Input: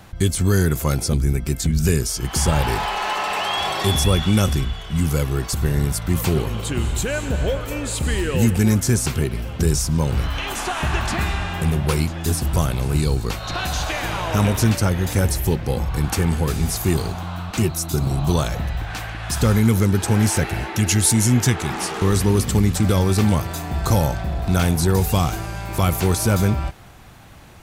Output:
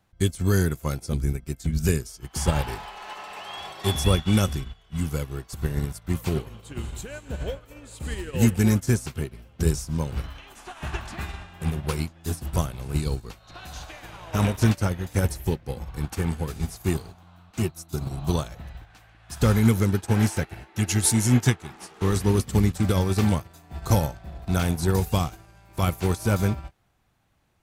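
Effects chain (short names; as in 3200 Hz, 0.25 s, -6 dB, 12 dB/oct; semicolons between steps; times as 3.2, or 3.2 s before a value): upward expander 2.5:1, over -29 dBFS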